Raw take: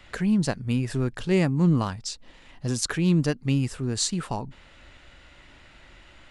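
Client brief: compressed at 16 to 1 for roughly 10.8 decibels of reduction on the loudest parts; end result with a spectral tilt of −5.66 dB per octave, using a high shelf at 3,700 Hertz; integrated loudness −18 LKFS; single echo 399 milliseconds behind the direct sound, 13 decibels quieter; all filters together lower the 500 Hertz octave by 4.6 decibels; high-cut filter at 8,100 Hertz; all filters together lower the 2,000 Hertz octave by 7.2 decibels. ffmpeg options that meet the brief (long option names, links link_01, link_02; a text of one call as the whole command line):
ffmpeg -i in.wav -af "lowpass=8100,equalizer=frequency=500:width_type=o:gain=-6.5,equalizer=frequency=2000:width_type=o:gain=-7,highshelf=frequency=3700:gain=-7.5,acompressor=threshold=-28dB:ratio=16,aecho=1:1:399:0.224,volume=16dB" out.wav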